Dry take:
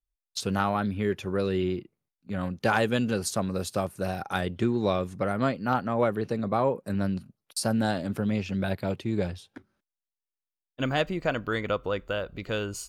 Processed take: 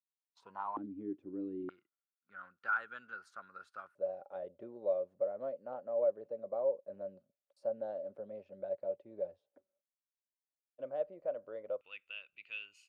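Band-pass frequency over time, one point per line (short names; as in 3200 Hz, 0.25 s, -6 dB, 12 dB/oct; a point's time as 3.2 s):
band-pass, Q 13
970 Hz
from 0.77 s 300 Hz
from 1.69 s 1400 Hz
from 3.95 s 570 Hz
from 11.81 s 2600 Hz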